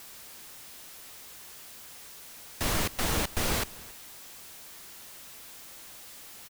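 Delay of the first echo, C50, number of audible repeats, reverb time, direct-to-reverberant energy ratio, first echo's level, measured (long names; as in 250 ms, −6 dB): 275 ms, no reverb audible, 1, no reverb audible, no reverb audible, −21.5 dB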